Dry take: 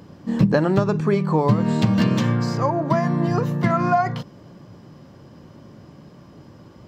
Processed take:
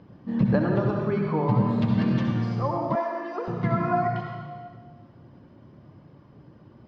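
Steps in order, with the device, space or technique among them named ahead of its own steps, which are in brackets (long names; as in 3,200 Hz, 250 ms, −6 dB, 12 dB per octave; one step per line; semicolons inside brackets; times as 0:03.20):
reverb reduction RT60 1.3 s
stairwell (convolution reverb RT60 1.8 s, pre-delay 58 ms, DRR 0 dB)
0:02.95–0:03.48: Butterworth high-pass 340 Hz 36 dB per octave
high-frequency loss of the air 240 metres
level −6 dB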